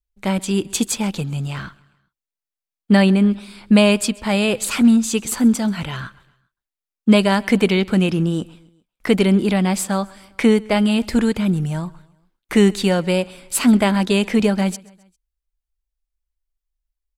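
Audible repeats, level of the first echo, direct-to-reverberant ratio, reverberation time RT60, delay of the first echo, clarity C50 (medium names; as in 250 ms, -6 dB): 2, -24.0 dB, no reverb, no reverb, 133 ms, no reverb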